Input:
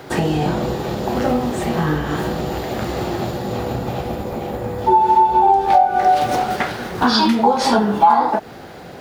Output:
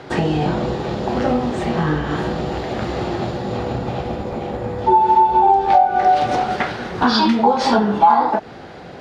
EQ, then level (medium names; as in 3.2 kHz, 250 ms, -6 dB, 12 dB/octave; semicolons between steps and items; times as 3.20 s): low-pass 5.2 kHz 12 dB/octave; 0.0 dB